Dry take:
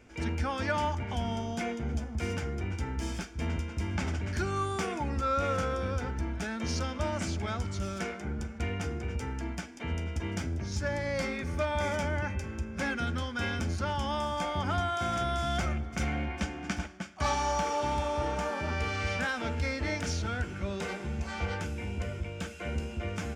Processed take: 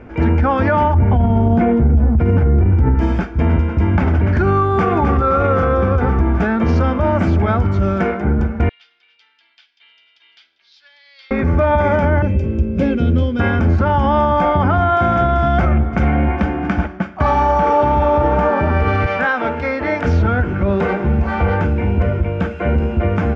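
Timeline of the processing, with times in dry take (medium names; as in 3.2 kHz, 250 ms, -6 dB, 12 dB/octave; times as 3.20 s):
0.94–2.95 s: tilt EQ -2.5 dB/octave
4.51–4.91 s: echo throw 260 ms, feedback 75%, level -5 dB
8.69–11.31 s: Butterworth band-pass 3.9 kHz, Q 2.6
12.22–13.40 s: high-order bell 1.2 kHz -15.5 dB
19.06–20.05 s: high-pass 520 Hz 6 dB/octave
whole clip: low-pass 1.4 kHz 12 dB/octave; loudness maximiser +25 dB; trim -5.5 dB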